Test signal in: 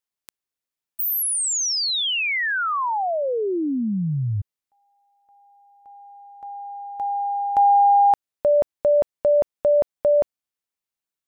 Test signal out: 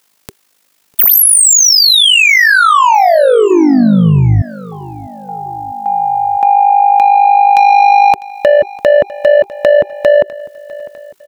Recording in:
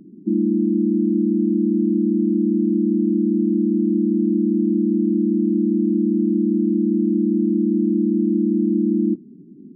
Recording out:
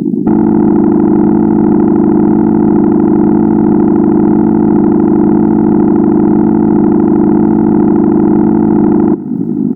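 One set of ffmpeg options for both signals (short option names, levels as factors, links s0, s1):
-af "highpass=160,bandreject=f=390:w=12,acompressor=threshold=0.00891:ratio=2:attack=43:release=163:knee=1:detection=rms,asoftclip=type=tanh:threshold=0.0266,tremolo=f=51:d=0.71,aecho=1:1:651|1302|1953:0.0668|0.0341|0.0174,alimiter=level_in=63.1:limit=0.891:release=50:level=0:latency=1,volume=0.891"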